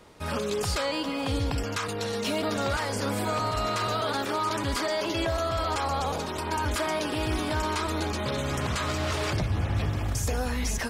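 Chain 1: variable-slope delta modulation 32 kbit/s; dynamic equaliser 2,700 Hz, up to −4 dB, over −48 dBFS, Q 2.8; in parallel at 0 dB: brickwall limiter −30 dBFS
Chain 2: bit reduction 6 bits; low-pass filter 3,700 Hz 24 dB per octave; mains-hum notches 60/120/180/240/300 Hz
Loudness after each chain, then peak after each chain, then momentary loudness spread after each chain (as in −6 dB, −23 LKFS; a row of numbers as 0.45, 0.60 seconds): −26.5, −29.0 LKFS; −16.0, −17.5 dBFS; 2, 3 LU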